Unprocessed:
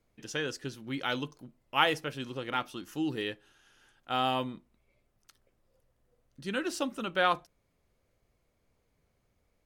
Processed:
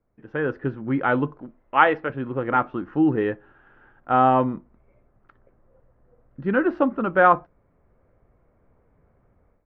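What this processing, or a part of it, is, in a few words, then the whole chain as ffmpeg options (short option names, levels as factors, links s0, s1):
action camera in a waterproof case: -filter_complex "[0:a]asettb=1/sr,asplit=3[s0][s1][s2];[s0]atrim=end=1.414[s3];[s1]atrim=start=1.41:end=2.1,asetpts=PTS-STARTPTS,afade=t=in:d=0.004:c=qsin,afade=t=out:st=0.686:d=0.004:c=qsin,equalizer=f=125:t=o:w=1:g=-11,equalizer=f=2000:t=o:w=1:g=3,equalizer=f=4000:t=o:w=1:g=8[s4];[s2]atrim=start=2.096[s5];[s3][s4]acrossfade=d=0.004:c1=hsin:c2=qsin[s6];[s6][s5]acrossfade=d=0.004:c1=qsin:c2=hsin,lowpass=f=1600:w=0.5412,lowpass=f=1600:w=1.3066,dynaudnorm=f=250:g=3:m=4.47" -ar 44100 -c:a aac -b:a 64k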